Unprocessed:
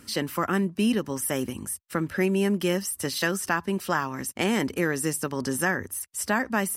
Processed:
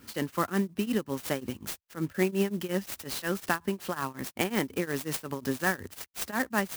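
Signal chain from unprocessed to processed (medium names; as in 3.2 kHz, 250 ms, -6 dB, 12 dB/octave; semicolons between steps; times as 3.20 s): tremolo triangle 5.5 Hz, depth 95%; sampling jitter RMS 0.036 ms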